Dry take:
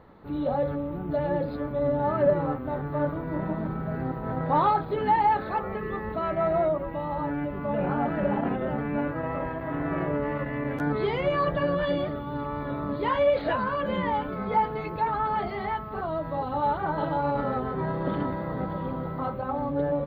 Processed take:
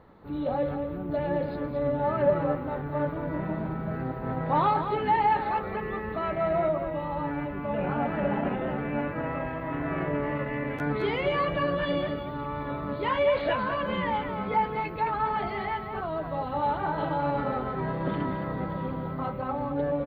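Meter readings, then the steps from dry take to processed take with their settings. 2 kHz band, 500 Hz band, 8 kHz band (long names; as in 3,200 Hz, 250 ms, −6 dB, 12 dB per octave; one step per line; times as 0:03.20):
+1.0 dB, −1.5 dB, can't be measured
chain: dynamic equaliser 2,500 Hz, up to +6 dB, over −51 dBFS, Q 1.8
on a send: single-tap delay 216 ms −8.5 dB
on the sum: level −2 dB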